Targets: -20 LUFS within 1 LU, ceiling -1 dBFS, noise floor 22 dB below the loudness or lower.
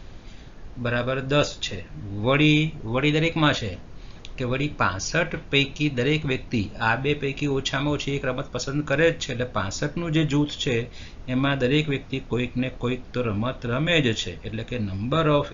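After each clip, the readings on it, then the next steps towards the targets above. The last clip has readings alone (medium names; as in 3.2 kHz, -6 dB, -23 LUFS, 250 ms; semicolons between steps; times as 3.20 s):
noise floor -42 dBFS; noise floor target -47 dBFS; loudness -24.5 LUFS; peak level -6.5 dBFS; loudness target -20.0 LUFS
-> noise print and reduce 6 dB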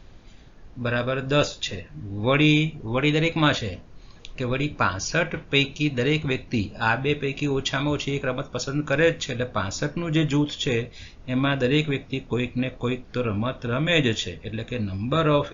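noise floor -47 dBFS; loudness -24.5 LUFS; peak level -6.5 dBFS; loudness target -20.0 LUFS
-> trim +4.5 dB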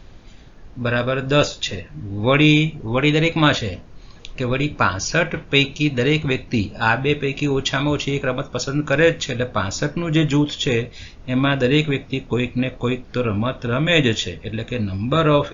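loudness -20.0 LUFS; peak level -2.0 dBFS; noise floor -42 dBFS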